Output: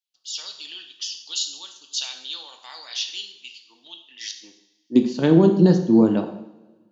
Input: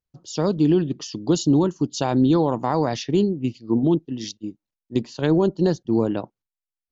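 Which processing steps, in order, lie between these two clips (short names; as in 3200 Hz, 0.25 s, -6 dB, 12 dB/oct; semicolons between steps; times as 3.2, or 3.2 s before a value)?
high-pass sweep 3300 Hz -> 190 Hz, 3.98–5.07; two-slope reverb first 0.72 s, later 1.9 s, from -19 dB, DRR 4 dB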